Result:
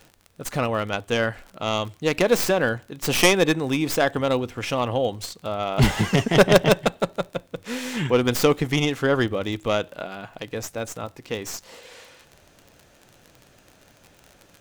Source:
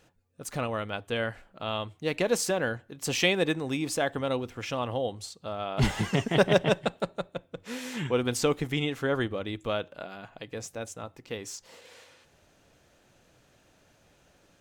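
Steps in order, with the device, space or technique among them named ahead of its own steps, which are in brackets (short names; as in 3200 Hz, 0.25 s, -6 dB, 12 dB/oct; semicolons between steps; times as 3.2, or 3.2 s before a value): record under a worn stylus (tracing distortion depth 0.16 ms; crackle 37/s -40 dBFS; pink noise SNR 42 dB); gain +7 dB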